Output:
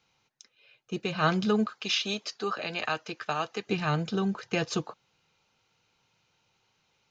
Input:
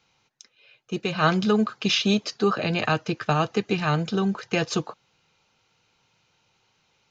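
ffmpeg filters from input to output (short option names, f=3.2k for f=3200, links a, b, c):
-filter_complex "[0:a]asettb=1/sr,asplit=3[a][b][c];[a]atrim=end=1.674[d];[b]atrim=start=1.67:end=3.67,asetpts=PTS-STARTPTS,afade=t=in:d=0.004:c=qsin,afade=t=out:st=1.996:d=0.004:c=qsin,highpass=f=680:p=1[e];[c]atrim=start=3.666[f];[d][e]acrossfade=d=0.004:c1=hsin:c2=qsin[g];[g][f]acrossfade=d=0.004:c1=qsin:c2=hsin,volume=-4.5dB"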